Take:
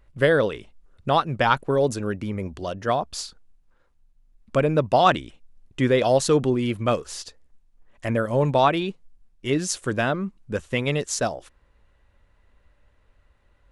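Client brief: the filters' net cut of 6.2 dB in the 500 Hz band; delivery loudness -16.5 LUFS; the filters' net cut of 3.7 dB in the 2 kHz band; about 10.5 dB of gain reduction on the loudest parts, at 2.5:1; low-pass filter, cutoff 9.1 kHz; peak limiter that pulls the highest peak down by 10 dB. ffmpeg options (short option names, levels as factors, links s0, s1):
-af "lowpass=9100,equalizer=f=500:t=o:g=-7.5,equalizer=f=2000:t=o:g=-4.5,acompressor=threshold=0.0251:ratio=2.5,volume=9.44,alimiter=limit=0.562:level=0:latency=1"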